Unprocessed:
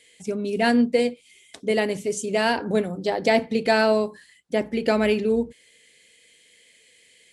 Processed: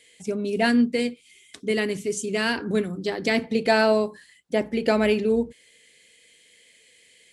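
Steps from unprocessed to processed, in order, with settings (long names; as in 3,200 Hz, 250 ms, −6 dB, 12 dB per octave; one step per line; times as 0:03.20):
0:00.66–0:03.44: flat-topped bell 680 Hz −9 dB 1.1 octaves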